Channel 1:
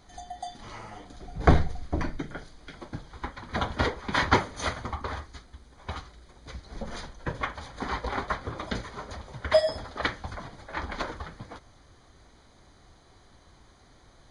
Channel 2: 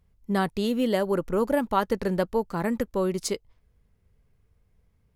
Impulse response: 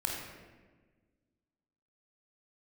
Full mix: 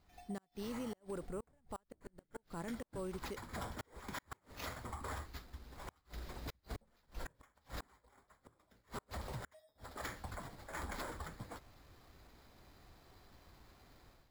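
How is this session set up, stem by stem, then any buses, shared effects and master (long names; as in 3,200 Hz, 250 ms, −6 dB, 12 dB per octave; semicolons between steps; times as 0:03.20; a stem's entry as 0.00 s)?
0:05.54 −16.5 dB → 0:06.01 −8 dB → 0:09.61 −8 dB → 0:09.89 −18.5 dB, 0.00 s, no send, automatic gain control gain up to 13 dB; soft clipping −7.5 dBFS, distortion −16 dB
−12.5 dB, 0.00 s, no send, no processing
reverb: not used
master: gate with flip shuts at −26 dBFS, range −40 dB; decimation without filtering 5×; brickwall limiter −34.5 dBFS, peak gain reduction 11 dB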